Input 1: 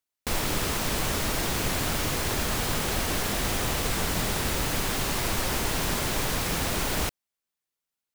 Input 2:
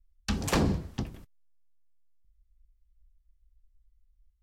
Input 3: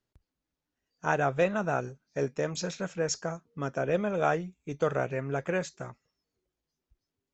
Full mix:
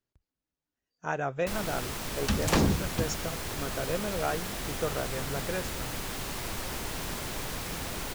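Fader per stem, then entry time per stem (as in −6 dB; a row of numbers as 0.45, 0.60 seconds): −8.0, +1.5, −4.5 decibels; 1.20, 2.00, 0.00 seconds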